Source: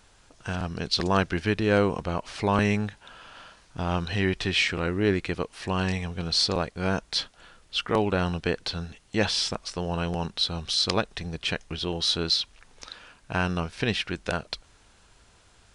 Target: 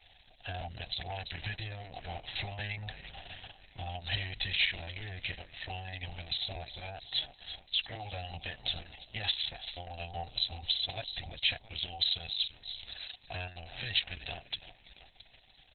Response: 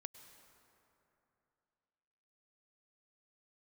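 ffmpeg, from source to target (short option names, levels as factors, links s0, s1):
-filter_complex "[0:a]highshelf=f=7500:g=4,asplit=5[s0][s1][s2][s3][s4];[s1]adelay=337,afreqshift=-55,volume=0.133[s5];[s2]adelay=674,afreqshift=-110,volume=0.0692[s6];[s3]adelay=1011,afreqshift=-165,volume=0.0359[s7];[s4]adelay=1348,afreqshift=-220,volume=0.0188[s8];[s0][s5][s6][s7][s8]amix=inputs=5:normalize=0,asoftclip=type=tanh:threshold=0.112,acompressor=threshold=0.0398:ratio=8,firequalizer=gain_entry='entry(120,0);entry(190,-20);entry(280,-19);entry(440,-15);entry(760,8);entry(1100,-28);entry(1700,1);entry(3800,8);entry(5700,2)':delay=0.05:min_phase=1,volume=0.75" -ar 48000 -c:a libopus -b:a 6k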